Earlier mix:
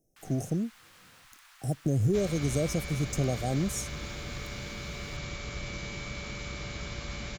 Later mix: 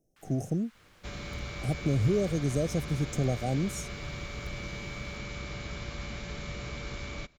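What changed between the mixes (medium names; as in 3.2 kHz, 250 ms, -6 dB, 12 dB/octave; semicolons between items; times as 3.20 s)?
first sound -4.5 dB; second sound: entry -1.10 s; master: add treble shelf 5.3 kHz -7 dB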